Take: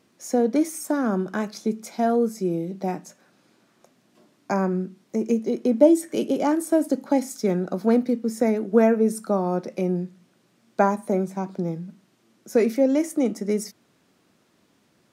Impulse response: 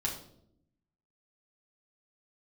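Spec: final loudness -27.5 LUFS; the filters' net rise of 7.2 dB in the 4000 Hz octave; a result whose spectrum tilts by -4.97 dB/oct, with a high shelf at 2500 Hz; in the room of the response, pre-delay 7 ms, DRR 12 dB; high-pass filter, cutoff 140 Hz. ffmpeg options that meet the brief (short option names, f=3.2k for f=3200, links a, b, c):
-filter_complex "[0:a]highpass=140,highshelf=f=2.5k:g=4.5,equalizer=f=4k:t=o:g=5.5,asplit=2[a][b];[1:a]atrim=start_sample=2205,adelay=7[c];[b][c]afir=irnorm=-1:irlink=0,volume=-16dB[d];[a][d]amix=inputs=2:normalize=0,volume=-4dB"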